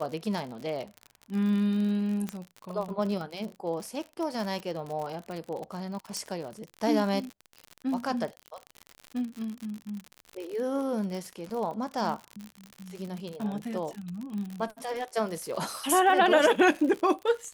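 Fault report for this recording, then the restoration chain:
crackle 60 per s -33 dBFS
2.29 s: pop -18 dBFS
6.17 s: pop -18 dBFS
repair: de-click

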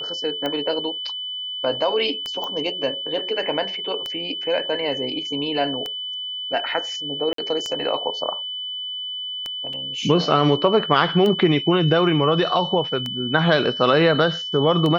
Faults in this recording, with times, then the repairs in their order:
tick 33 1/3 rpm -13 dBFS
whine 3 kHz -27 dBFS
2.44 s: pop -16 dBFS
7.33–7.38 s: dropout 53 ms
9.73 s: dropout 3.6 ms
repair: de-click; band-stop 3 kHz, Q 30; interpolate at 7.33 s, 53 ms; interpolate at 9.73 s, 3.6 ms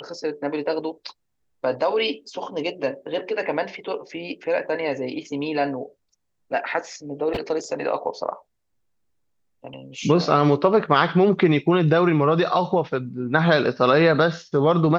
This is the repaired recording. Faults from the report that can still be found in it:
nothing left

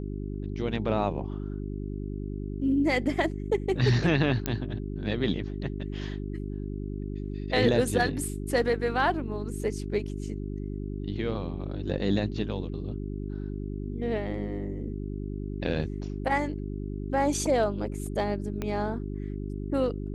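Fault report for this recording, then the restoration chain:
hum 50 Hz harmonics 8 -34 dBFS
4.46 s: pop -12 dBFS
18.62 s: pop -18 dBFS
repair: de-click; de-hum 50 Hz, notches 8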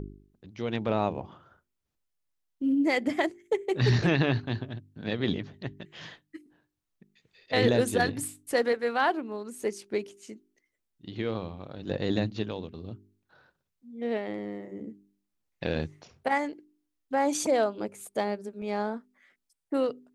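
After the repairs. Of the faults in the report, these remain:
18.62 s: pop

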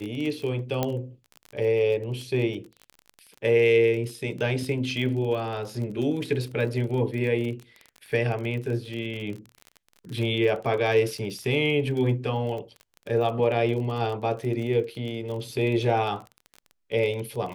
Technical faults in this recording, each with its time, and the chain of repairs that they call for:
crackle 28 per s -32 dBFS
0.83 s: pop -11 dBFS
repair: de-click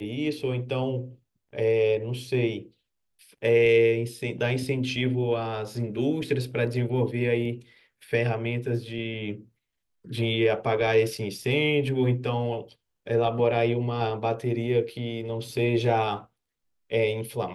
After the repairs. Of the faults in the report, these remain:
nothing left

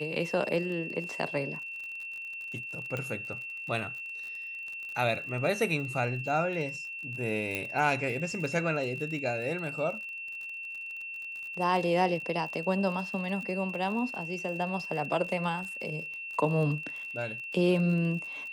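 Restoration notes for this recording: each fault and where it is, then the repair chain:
crackle 44 per s -38 dBFS
whine 2.7 kHz -37 dBFS
2.97 s: pop -21 dBFS
7.55 s: pop -17 dBFS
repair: de-click; band-stop 2.7 kHz, Q 30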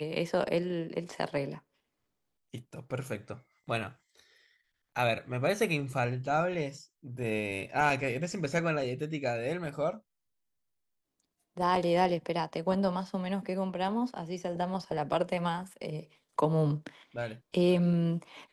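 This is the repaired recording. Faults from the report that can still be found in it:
nothing left

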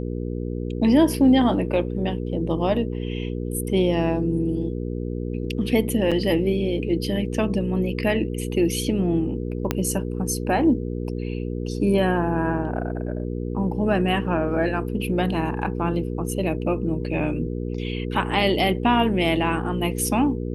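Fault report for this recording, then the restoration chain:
hum 60 Hz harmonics 8 -28 dBFS
6.11–6.12 s: dropout 6.3 ms
9.71 s: pop -7 dBFS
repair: de-click; de-hum 60 Hz, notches 8; interpolate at 6.11 s, 6.3 ms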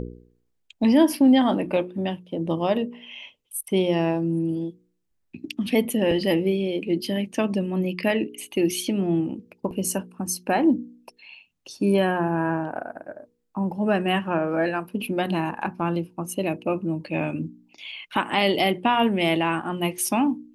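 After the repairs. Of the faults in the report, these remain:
9.71 s: pop

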